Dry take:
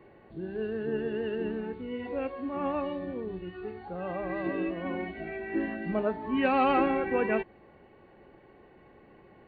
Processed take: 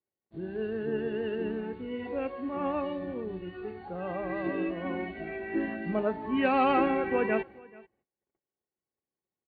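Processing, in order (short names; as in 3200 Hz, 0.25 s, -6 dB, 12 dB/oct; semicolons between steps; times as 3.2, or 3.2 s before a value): gate -49 dBFS, range -41 dB; HPF 47 Hz; echo 0.435 s -23 dB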